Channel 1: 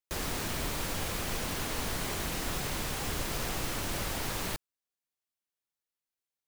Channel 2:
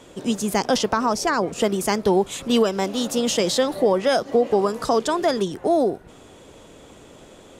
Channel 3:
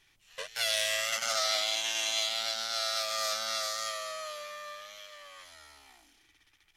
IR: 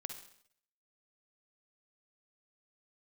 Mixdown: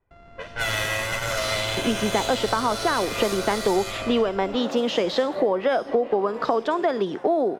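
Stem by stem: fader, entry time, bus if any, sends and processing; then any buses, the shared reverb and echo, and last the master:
-14.5 dB, 0.00 s, no bus, no send, sorted samples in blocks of 64 samples; low-pass 1.9 kHz 12 dB/octave
-2.5 dB, 1.60 s, bus A, send -21 dB, Bessel high-pass 300 Hz, order 2; expander -34 dBFS; peaking EQ 4.1 kHz +2.5 dB
0.0 dB, 0.00 s, muted 4.21–5.02 s, bus A, send -4.5 dB, comb filter that takes the minimum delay 2 ms; level-controlled noise filter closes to 800 Hz, open at -33 dBFS
bus A: 0.0 dB, low-pass 2.6 kHz 12 dB/octave; compression, threshold -29 dBFS, peak gain reduction 11.5 dB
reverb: on, RT60 0.65 s, pre-delay 45 ms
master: level rider gain up to 9 dB

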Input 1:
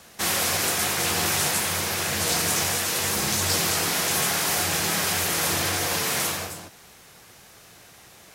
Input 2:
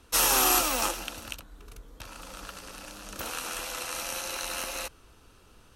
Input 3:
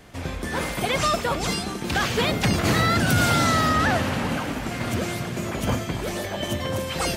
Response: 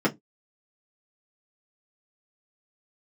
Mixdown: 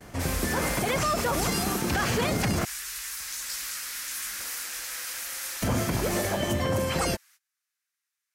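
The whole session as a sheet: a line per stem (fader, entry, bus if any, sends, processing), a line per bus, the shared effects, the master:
-8.5 dB, 0.00 s, no send, high-pass 1.4 kHz 24 dB/octave
-12.0 dB, 1.20 s, no send, none
+2.5 dB, 0.00 s, muted 2.65–5.62 s, no send, band-stop 3.7 kHz, Q 16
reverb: none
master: gate -50 dBFS, range -24 dB; peaking EQ 3.2 kHz -5 dB 1 oct; peak limiter -17 dBFS, peak gain reduction 9.5 dB

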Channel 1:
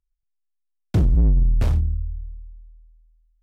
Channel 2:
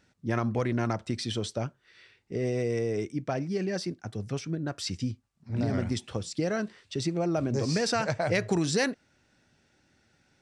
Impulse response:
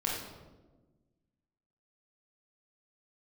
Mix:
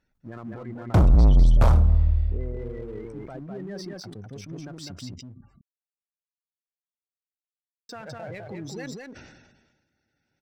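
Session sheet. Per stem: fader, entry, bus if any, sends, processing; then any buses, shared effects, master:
-3.5 dB, 0.00 s, send -16 dB, no echo send, high-order bell 880 Hz +12 dB
-9.0 dB, 0.00 s, muted 5.41–7.89 s, no send, echo send -4 dB, spectral gate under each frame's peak -20 dB strong; peak limiter -25 dBFS, peak gain reduction 11 dB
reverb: on, RT60 1.3 s, pre-delay 21 ms
echo: delay 203 ms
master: waveshaping leveller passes 1; decay stretcher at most 45 dB/s

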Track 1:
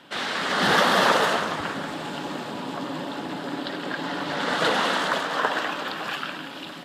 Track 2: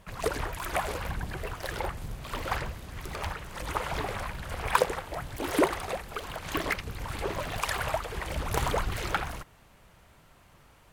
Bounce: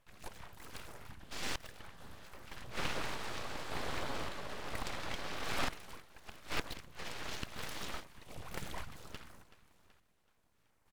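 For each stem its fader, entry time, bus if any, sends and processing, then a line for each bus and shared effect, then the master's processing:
-4.0 dB, 1.20 s, no send, no echo send, inverted gate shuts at -15 dBFS, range -32 dB
-11.0 dB, 0.00 s, no send, echo send -19.5 dB, step-sequenced notch 5.7 Hz 230–3000 Hz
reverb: none
echo: feedback delay 378 ms, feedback 55%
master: full-wave rectifier; random-step tremolo

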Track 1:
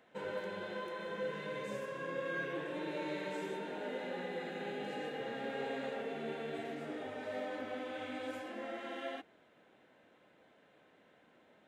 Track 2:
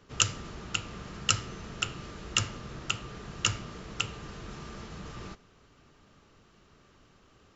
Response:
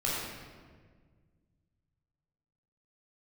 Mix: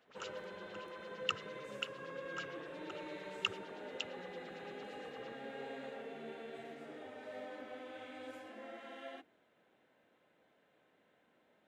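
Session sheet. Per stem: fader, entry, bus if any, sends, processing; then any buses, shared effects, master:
-6.5 dB, 0.00 s, no send, hum notches 50/100/150/200/250/300/350 Hz
-5.5 dB, 0.00 s, no send, LFO band-pass sine 8.8 Hz 350–3800 Hz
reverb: none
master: none

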